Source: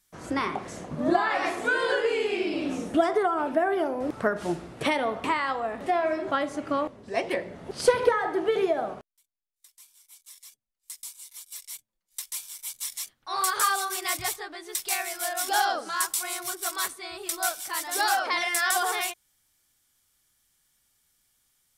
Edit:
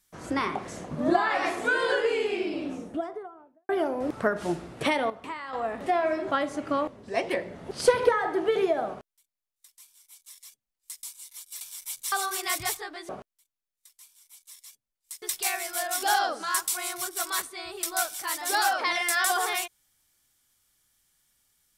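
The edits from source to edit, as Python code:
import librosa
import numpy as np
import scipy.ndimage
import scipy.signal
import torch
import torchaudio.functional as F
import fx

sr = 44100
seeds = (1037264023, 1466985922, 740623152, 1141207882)

y = fx.studio_fade_out(x, sr, start_s=2.0, length_s=1.69)
y = fx.edit(y, sr, fx.clip_gain(start_s=5.1, length_s=0.43, db=-10.5),
    fx.duplicate(start_s=8.88, length_s=2.13, to_s=14.68),
    fx.cut(start_s=11.61, length_s=0.77),
    fx.cut(start_s=12.89, length_s=0.82), tone=tone)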